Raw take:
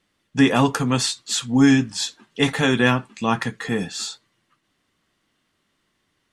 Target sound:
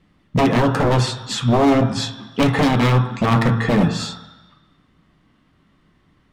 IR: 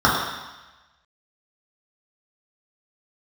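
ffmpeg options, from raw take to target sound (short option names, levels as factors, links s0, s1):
-filter_complex "[0:a]bandreject=f=113.2:t=h:w=4,bandreject=f=226.4:t=h:w=4,bandreject=f=339.6:t=h:w=4,bandreject=f=452.8:t=h:w=4,bandreject=f=566:t=h:w=4,bandreject=f=679.2:t=h:w=4,bandreject=f=792.4:t=h:w=4,bandreject=f=905.6:t=h:w=4,bandreject=f=1018.8:t=h:w=4,bandreject=f=1132:t=h:w=4,bandreject=f=1245.2:t=h:w=4,bandreject=f=1358.4:t=h:w=4,bandreject=f=1471.6:t=h:w=4,bandreject=f=1584.8:t=h:w=4,bandreject=f=1698:t=h:w=4,bandreject=f=1811.2:t=h:w=4,bandreject=f=1924.4:t=h:w=4,bandreject=f=2037.6:t=h:w=4,bandreject=f=2150.8:t=h:w=4,bandreject=f=2264:t=h:w=4,bandreject=f=2377.2:t=h:w=4,bandreject=f=2490.4:t=h:w=4,bandreject=f=2603.6:t=h:w=4,bandreject=f=2716.8:t=h:w=4,bandreject=f=2830:t=h:w=4,bandreject=f=2943.2:t=h:w=4,bandreject=f=3056.4:t=h:w=4,bandreject=f=3169.6:t=h:w=4,bandreject=f=3282.8:t=h:w=4,bandreject=f=3396:t=h:w=4,bandreject=f=3509.2:t=h:w=4,bandreject=f=3622.4:t=h:w=4,bandreject=f=3735.6:t=h:w=4,acompressor=threshold=0.0794:ratio=4,bass=f=250:g=12,treble=f=4000:g=-12,aeval=exprs='0.119*(abs(mod(val(0)/0.119+3,4)-2)-1)':c=same,asplit=2[s0][s1];[1:a]atrim=start_sample=2205[s2];[s1][s2]afir=irnorm=-1:irlink=0,volume=0.0355[s3];[s0][s3]amix=inputs=2:normalize=0,volume=2.24"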